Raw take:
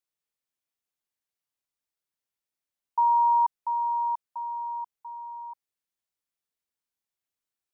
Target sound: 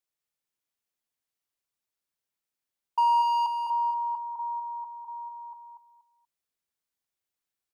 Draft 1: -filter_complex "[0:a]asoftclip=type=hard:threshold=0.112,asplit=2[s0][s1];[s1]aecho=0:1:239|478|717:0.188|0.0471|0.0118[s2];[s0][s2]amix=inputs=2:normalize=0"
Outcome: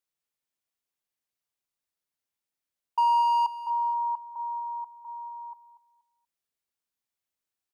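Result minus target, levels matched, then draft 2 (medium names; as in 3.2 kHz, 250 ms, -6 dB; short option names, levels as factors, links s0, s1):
echo-to-direct -7.5 dB
-filter_complex "[0:a]asoftclip=type=hard:threshold=0.112,asplit=2[s0][s1];[s1]aecho=0:1:239|478|717:0.447|0.112|0.0279[s2];[s0][s2]amix=inputs=2:normalize=0"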